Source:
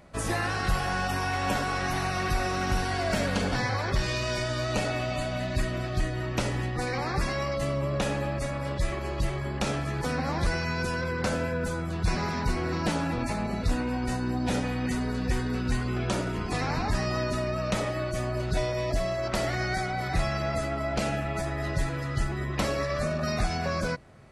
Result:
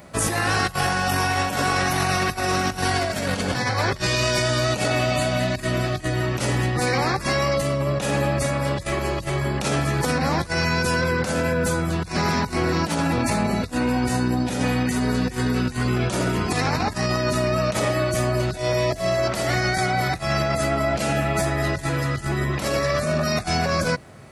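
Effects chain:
high-shelf EQ 7,900 Hz +10 dB
compressor whose output falls as the input rises −29 dBFS, ratio −0.5
high-pass filter 74 Hz
level +7.5 dB

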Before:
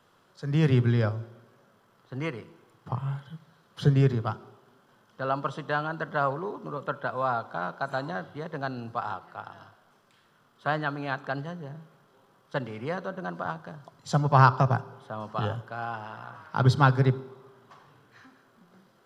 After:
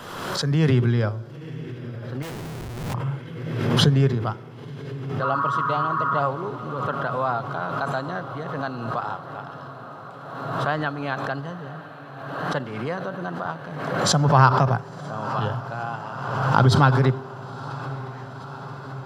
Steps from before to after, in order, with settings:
0:05.25–0:06.19: healed spectral selection 930–1,900 Hz after
on a send: feedback delay with all-pass diffusion 982 ms, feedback 77%, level −14.5 dB
0:02.22–0:02.94: on the sum: comparator with hysteresis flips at −43 dBFS
background raised ahead of every attack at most 38 dB per second
level +2.5 dB

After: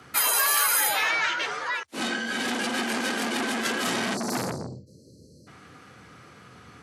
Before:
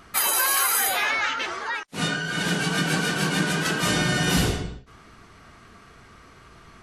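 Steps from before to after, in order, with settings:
frequency shifter +68 Hz
time-frequency box erased 0:04.15–0:05.47, 630–4,000 Hz
saturating transformer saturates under 2,200 Hz

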